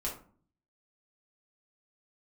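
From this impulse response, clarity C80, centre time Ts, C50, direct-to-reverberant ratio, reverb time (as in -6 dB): 13.0 dB, 26 ms, 7.0 dB, -5.0 dB, 0.45 s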